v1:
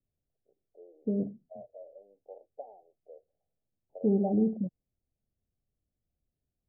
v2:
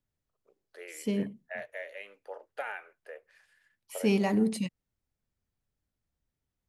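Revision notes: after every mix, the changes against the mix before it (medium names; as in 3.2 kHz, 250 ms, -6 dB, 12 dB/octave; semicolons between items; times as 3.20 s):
first voice +4.5 dB; master: remove steep low-pass 780 Hz 96 dB/octave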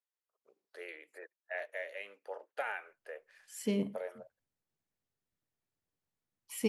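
second voice: entry +2.60 s; master: add bass shelf 130 Hz -8.5 dB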